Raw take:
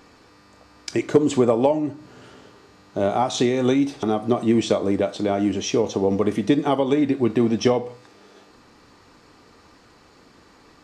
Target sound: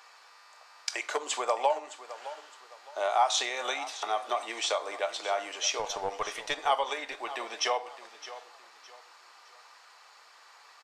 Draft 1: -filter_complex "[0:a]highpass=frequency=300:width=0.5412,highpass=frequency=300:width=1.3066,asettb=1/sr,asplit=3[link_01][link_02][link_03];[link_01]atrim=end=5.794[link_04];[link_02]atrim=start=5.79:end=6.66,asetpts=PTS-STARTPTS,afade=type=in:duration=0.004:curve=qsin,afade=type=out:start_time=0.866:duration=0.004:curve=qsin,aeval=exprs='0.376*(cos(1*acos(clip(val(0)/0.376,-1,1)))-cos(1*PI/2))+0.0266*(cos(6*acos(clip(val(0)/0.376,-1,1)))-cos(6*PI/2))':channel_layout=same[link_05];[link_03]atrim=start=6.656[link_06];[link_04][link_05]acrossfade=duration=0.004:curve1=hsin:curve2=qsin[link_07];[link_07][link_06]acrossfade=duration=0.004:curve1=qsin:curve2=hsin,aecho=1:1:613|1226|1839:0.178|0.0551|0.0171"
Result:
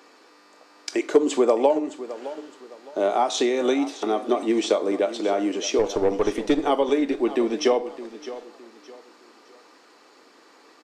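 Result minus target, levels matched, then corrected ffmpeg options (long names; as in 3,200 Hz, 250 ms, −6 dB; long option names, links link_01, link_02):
250 Hz band +18.5 dB
-filter_complex "[0:a]highpass=frequency=740:width=0.5412,highpass=frequency=740:width=1.3066,asettb=1/sr,asplit=3[link_01][link_02][link_03];[link_01]atrim=end=5.794[link_04];[link_02]atrim=start=5.79:end=6.66,asetpts=PTS-STARTPTS,afade=type=in:duration=0.004:curve=qsin,afade=type=out:start_time=0.866:duration=0.004:curve=qsin,aeval=exprs='0.376*(cos(1*acos(clip(val(0)/0.376,-1,1)))-cos(1*PI/2))+0.0266*(cos(6*acos(clip(val(0)/0.376,-1,1)))-cos(6*PI/2))':channel_layout=same[link_05];[link_03]atrim=start=6.656[link_06];[link_04][link_05]acrossfade=duration=0.004:curve1=hsin:curve2=qsin[link_07];[link_07][link_06]acrossfade=duration=0.004:curve1=qsin:curve2=hsin,aecho=1:1:613|1226|1839:0.178|0.0551|0.0171"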